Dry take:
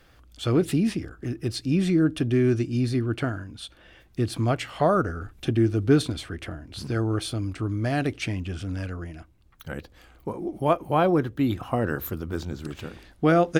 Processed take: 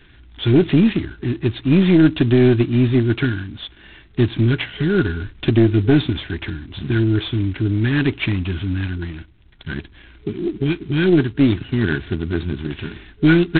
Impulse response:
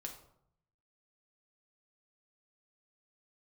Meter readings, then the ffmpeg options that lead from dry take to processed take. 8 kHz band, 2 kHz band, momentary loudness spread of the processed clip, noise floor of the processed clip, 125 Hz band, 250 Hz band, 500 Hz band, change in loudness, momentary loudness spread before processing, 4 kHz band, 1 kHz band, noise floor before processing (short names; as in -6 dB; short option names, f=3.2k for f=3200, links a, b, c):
under -35 dB, +9.0 dB, 16 LU, -47 dBFS, +8.5 dB, +8.5 dB, +4.5 dB, +7.5 dB, 15 LU, +8.0 dB, -5.0 dB, -56 dBFS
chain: -af "afftfilt=real='re*(1-between(b*sr/4096,420,1400))':imag='im*(1-between(b*sr/4096,420,1400))':win_size=4096:overlap=0.75,aeval=exprs='0.355*(cos(1*acos(clip(val(0)/0.355,-1,1)))-cos(1*PI/2))+0.0562*(cos(2*acos(clip(val(0)/0.355,-1,1)))-cos(2*PI/2))+0.0224*(cos(3*acos(clip(val(0)/0.355,-1,1)))-cos(3*PI/2))':c=same,alimiter=level_in=13.5dB:limit=-1dB:release=50:level=0:latency=1,volume=-3dB" -ar 8000 -c:a adpcm_g726 -b:a 16k